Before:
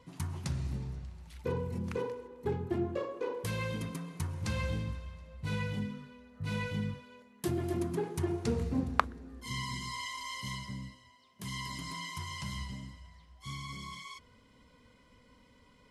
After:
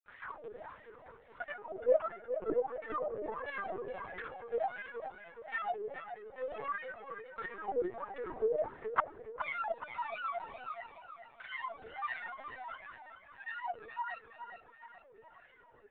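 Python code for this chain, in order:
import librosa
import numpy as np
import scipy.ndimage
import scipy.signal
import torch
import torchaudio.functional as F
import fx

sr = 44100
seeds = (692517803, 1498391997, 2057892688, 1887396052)

p1 = scipy.signal.sosfilt(scipy.signal.butter(4, 310.0, 'highpass', fs=sr, output='sos'), x)
p2 = fx.rider(p1, sr, range_db=5, speed_s=0.5)
p3 = p1 + F.gain(torch.from_numpy(p2), 0.0).numpy()
p4 = fx.granulator(p3, sr, seeds[0], grain_ms=100.0, per_s=20.0, spray_ms=100.0, spread_st=7)
p5 = fx.wah_lfo(p4, sr, hz=1.5, low_hz=430.0, high_hz=1900.0, q=7.0)
p6 = p5 + fx.echo_feedback(p5, sr, ms=420, feedback_pct=46, wet_db=-9.5, dry=0)
p7 = fx.lpc_vocoder(p6, sr, seeds[1], excitation='pitch_kept', order=16)
y = F.gain(torch.from_numpy(p7), 7.5).numpy()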